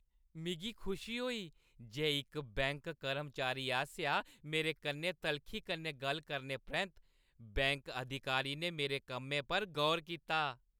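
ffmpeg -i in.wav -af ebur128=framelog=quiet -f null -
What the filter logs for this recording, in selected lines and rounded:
Integrated loudness:
  I:         -38.1 LUFS
  Threshold: -48.3 LUFS
Loudness range:
  LRA:         2.4 LU
  Threshold: -58.4 LUFS
  LRA low:   -39.6 LUFS
  LRA high:  -37.2 LUFS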